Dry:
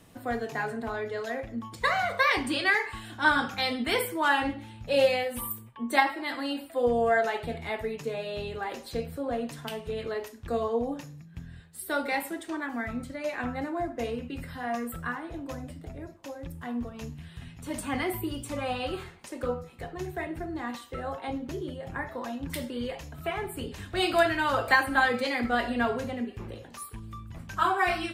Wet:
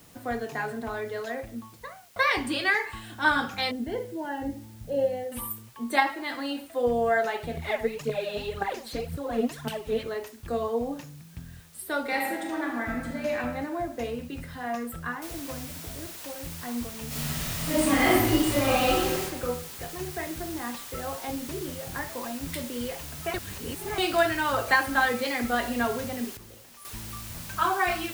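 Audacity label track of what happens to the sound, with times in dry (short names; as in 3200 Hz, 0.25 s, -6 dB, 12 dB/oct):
1.270000	2.160000	studio fade out
3.710000	5.320000	running mean over 36 samples
7.570000	10.030000	phaser 1.9 Hz, delay 4.8 ms, feedback 70%
12.010000	13.380000	reverb throw, RT60 1.4 s, DRR 0.5 dB
15.220000	15.220000	noise floor step -57 dB -42 dB
17.070000	19.210000	reverb throw, RT60 1.1 s, DRR -9.5 dB
23.340000	23.980000	reverse
26.370000	26.850000	gain -10.5 dB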